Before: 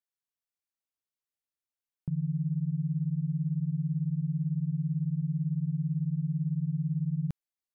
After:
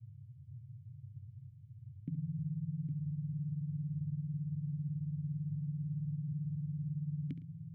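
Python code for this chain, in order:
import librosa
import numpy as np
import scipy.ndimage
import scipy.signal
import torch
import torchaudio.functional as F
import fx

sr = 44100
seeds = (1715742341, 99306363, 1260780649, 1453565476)

y = fx.vowel_filter(x, sr, vowel='i')
y = fx.echo_multitap(y, sr, ms=(69, 111, 810), db=(-13.0, -19.0, -10.0))
y = fx.dmg_noise_band(y, sr, seeds[0], low_hz=91.0, high_hz=140.0, level_db=-61.0)
y = y * 10.0 ** (10.5 / 20.0)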